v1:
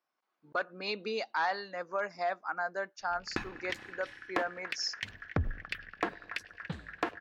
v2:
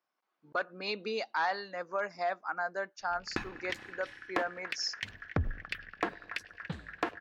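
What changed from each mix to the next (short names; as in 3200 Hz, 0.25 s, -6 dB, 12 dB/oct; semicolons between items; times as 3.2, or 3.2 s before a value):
none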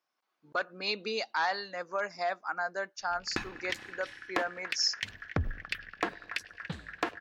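background: add high shelf 8200 Hz -4 dB; master: add high shelf 3400 Hz +9 dB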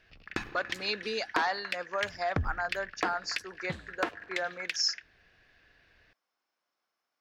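background: entry -3.00 s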